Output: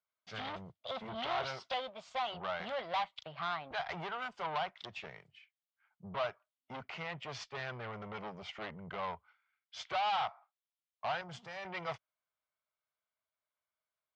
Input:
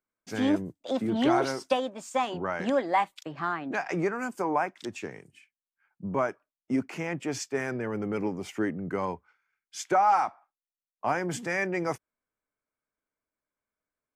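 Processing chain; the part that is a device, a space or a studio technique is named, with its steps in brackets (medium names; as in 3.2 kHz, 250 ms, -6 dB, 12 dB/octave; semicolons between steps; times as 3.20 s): 11.21–11.65 s: graphic EQ 250/500/2000/4000 Hz -5/-5/-11/-4 dB; scooped metal amplifier (valve stage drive 30 dB, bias 0.55; cabinet simulation 110–3500 Hz, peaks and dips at 650 Hz +6 dB, 1.7 kHz -8 dB, 2.5 kHz -7 dB; amplifier tone stack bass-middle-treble 10-0-10); trim +9.5 dB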